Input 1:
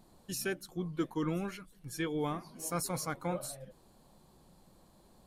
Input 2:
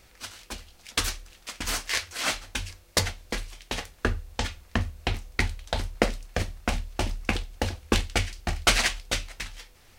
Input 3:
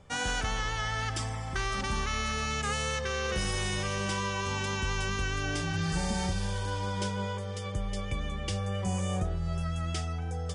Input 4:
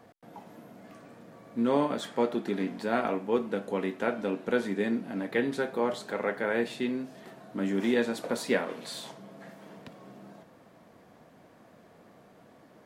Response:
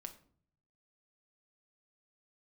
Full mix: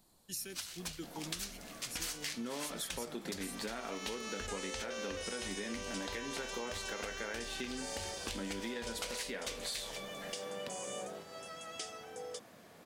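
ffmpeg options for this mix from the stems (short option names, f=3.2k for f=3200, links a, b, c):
-filter_complex "[0:a]acrossover=split=430|3000[a][b][c];[b]acompressor=threshold=-49dB:ratio=6[d];[a][d][c]amix=inputs=3:normalize=0,volume=-10dB,asplit=2[e][f];[1:a]alimiter=limit=-13.5dB:level=0:latency=1:release=201,adelay=350,volume=-10dB[g];[2:a]highpass=f=470:t=q:w=3.4,adelay=1850,volume=-12dB[h];[3:a]adelay=800,volume=-3dB[i];[f]apad=whole_len=546747[j];[h][j]sidechaincompress=threshold=-54dB:ratio=8:attack=16:release=1220[k];[g][i]amix=inputs=2:normalize=0,alimiter=level_in=2dB:limit=-24dB:level=0:latency=1:release=278,volume=-2dB,volume=0dB[l];[e][k][l]amix=inputs=3:normalize=0,highshelf=f=2.1k:g=12,acompressor=threshold=-37dB:ratio=6"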